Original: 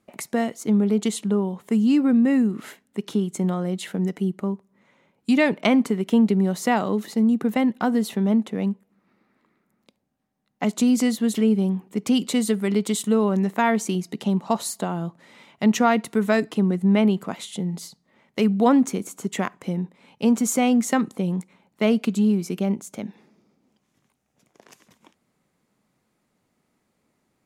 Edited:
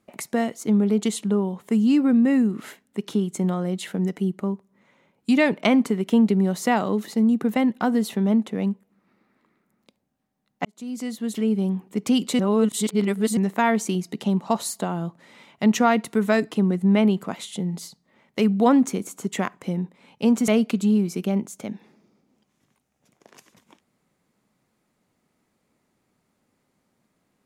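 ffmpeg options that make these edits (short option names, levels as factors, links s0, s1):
-filter_complex "[0:a]asplit=5[s0][s1][s2][s3][s4];[s0]atrim=end=10.65,asetpts=PTS-STARTPTS,afade=t=out:st=10.646:d=0.004:c=hsin[s5];[s1]atrim=start=10.65:end=12.392,asetpts=PTS-STARTPTS,afade=t=in:d=1.19[s6];[s2]atrim=start=12.388:end=13.372,asetpts=PTS-STARTPTS,areverse[s7];[s3]atrim=start=13.368:end=20.482[s8];[s4]atrim=start=21.818[s9];[s5][s6]concat=n=2:v=0:a=1[s10];[s10][s7]acrossfade=d=0.004:c1=hsin:c2=hsin[s11];[s11][s8]acrossfade=d=0.004:c1=hsin:c2=hsin[s12];[s12][s9]acrossfade=d=0.004:c1=hsin:c2=hsin"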